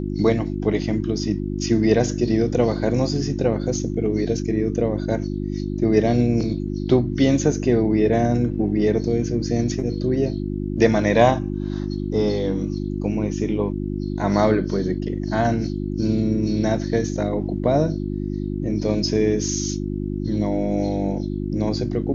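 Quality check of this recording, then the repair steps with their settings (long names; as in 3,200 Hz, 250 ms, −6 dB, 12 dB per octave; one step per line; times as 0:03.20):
mains hum 50 Hz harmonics 7 −26 dBFS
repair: hum removal 50 Hz, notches 7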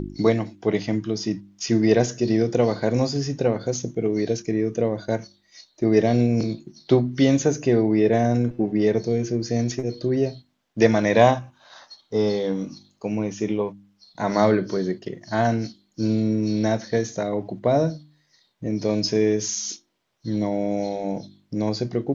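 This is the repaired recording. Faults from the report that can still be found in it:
none of them is left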